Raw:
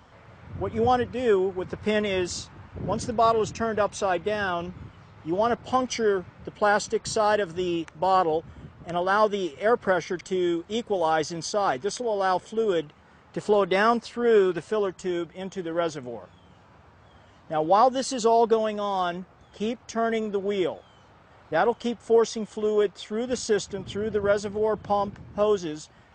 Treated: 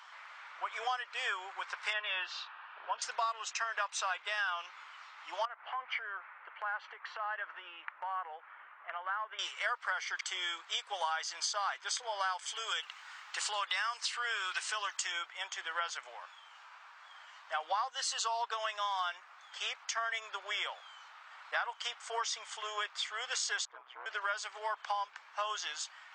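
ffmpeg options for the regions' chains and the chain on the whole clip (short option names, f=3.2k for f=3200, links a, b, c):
-filter_complex "[0:a]asettb=1/sr,asplit=3[a][b][c];[a]atrim=end=1.934[d];[b]atrim=start=1.93:end=3.02,asetpts=PTS-STARTPTS,afade=t=in:d=0.004:c=qsin,afade=t=out:st=1.086:d=0.004:c=qsin,lowpass=f=3.3k:w=0.5412,lowpass=f=3.3k:w=1.3066,bandreject=f=2.1k:w=5.7[e];[c]atrim=start=3.016[f];[d][e]acrossfade=d=0.004:c1=hsin:c2=qsin[g];[g][f]acrossfade=d=0.004:c1=qsin:c2=hsin,asettb=1/sr,asplit=3[h][i][j];[h]atrim=end=5.454[k];[i]atrim=start=5.45:end=9.39,asetpts=PTS-STARTPTS,afade=t=in:d=0.004:c=qsin,afade=t=out:st=3.936:d=0.004:c=qsin,lowpass=f=2.2k:w=0.5412,lowpass=f=2.2k:w=1.3066,acompressor=threshold=-30dB:ratio=10:attack=3.2:release=140:knee=1:detection=peak[l];[j]atrim=start=9.386[m];[k][l]acrossfade=d=0.004:c1=hsin:c2=qsin[n];[n][m]acrossfade=d=0.004:c1=qsin:c2=hsin,asettb=1/sr,asplit=3[o][p][q];[o]atrim=end=12.394[r];[p]atrim=start=12.39:end=15.12,asetpts=PTS-STARTPTS,afade=t=in:d=0.004:c=qsin,afade=t=out:st=2.726:d=0.004:c=qsin,highpass=240,highshelf=f=2.6k:g=10.5,acompressor=threshold=-27dB:ratio=2:attack=3.2:release=140:knee=1:detection=peak[s];[q]atrim=start=15.116[t];[r][s]acrossfade=d=0.004:c1=hsin:c2=qsin[u];[u][t]acrossfade=d=0.004:c1=qsin:c2=hsin,asettb=1/sr,asplit=3[v][w][x];[v]atrim=end=23.654[y];[w]atrim=start=23.65:end=24.06,asetpts=PTS-STARTPTS,afade=t=in:d=0.004:c=qsin,afade=t=out:st=0.406:d=0.004:c=qsin,asoftclip=type=hard:threshold=-27.5dB,lowpass=1.1k,aeval=exprs='val(0)*sin(2*PI*63*n/s)':c=same[z];[x]atrim=start=24.056[aa];[y][z]acrossfade=d=0.004:c1=hsin:c2=qsin[ab];[ab][aa]acrossfade=d=0.004:c1=qsin:c2=hsin,highpass=f=990:w=0.5412,highpass=f=990:w=1.3066,equalizer=f=2.1k:w=0.3:g=6,acompressor=threshold=-32dB:ratio=6"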